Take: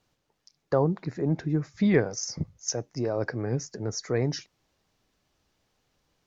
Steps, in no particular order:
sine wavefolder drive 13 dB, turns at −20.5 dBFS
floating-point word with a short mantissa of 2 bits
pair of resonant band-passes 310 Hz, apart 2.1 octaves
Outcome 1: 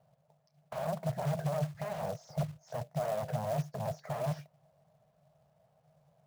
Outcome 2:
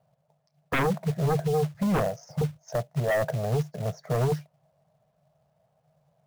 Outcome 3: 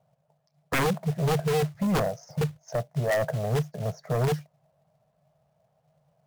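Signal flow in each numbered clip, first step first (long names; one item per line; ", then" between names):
sine wavefolder, then pair of resonant band-passes, then floating-point word with a short mantissa
pair of resonant band-passes, then sine wavefolder, then floating-point word with a short mantissa
pair of resonant band-passes, then floating-point word with a short mantissa, then sine wavefolder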